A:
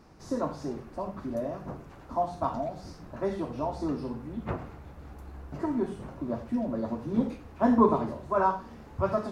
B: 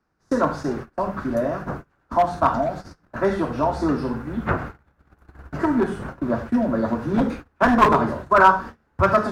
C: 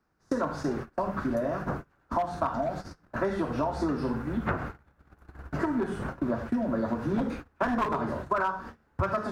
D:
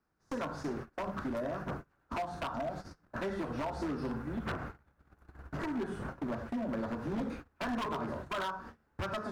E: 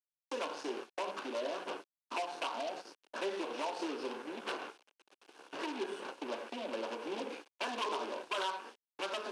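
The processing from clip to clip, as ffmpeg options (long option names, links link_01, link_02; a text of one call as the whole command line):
ffmpeg -i in.wav -filter_complex "[0:a]equalizer=frequency=1500:width=2.2:gain=11,agate=range=-28dB:threshold=-40dB:ratio=16:detection=peak,acrossover=split=100|890|1300[link_01][link_02][link_03][link_04];[link_02]aeval=exprs='0.0794*(abs(mod(val(0)/0.0794+3,4)-2)-1)':channel_layout=same[link_05];[link_01][link_05][link_03][link_04]amix=inputs=4:normalize=0,volume=9dB" out.wav
ffmpeg -i in.wav -af "acompressor=threshold=-23dB:ratio=10,volume=-1.5dB" out.wav
ffmpeg -i in.wav -af "aeval=exprs='0.0668*(abs(mod(val(0)/0.0668+3,4)-2)-1)':channel_layout=same,volume=-6dB" out.wav
ffmpeg -i in.wav -af "aeval=exprs='0.0355*(cos(1*acos(clip(val(0)/0.0355,-1,1)))-cos(1*PI/2))+0.00355*(cos(8*acos(clip(val(0)/0.0355,-1,1)))-cos(8*PI/2))':channel_layout=same,acrusher=bits=9:mix=0:aa=0.000001,highpass=frequency=370:width=0.5412,highpass=frequency=370:width=1.3066,equalizer=frequency=660:width_type=q:width=4:gain=-6,equalizer=frequency=1300:width_type=q:width=4:gain=-8,equalizer=frequency=1900:width_type=q:width=4:gain=-7,equalizer=frequency=2800:width_type=q:width=4:gain=5,equalizer=frequency=7400:width_type=q:width=4:gain=-5,lowpass=frequency=9200:width=0.5412,lowpass=frequency=9200:width=1.3066,volume=3dB" out.wav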